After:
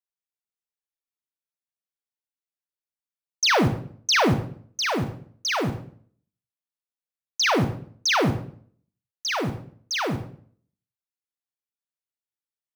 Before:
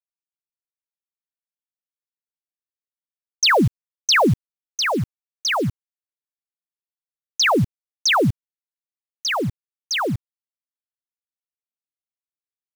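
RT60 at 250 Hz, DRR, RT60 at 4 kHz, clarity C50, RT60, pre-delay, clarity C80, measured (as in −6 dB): 0.65 s, 6.0 dB, 0.45 s, 8.5 dB, 0.55 s, 31 ms, 12.0 dB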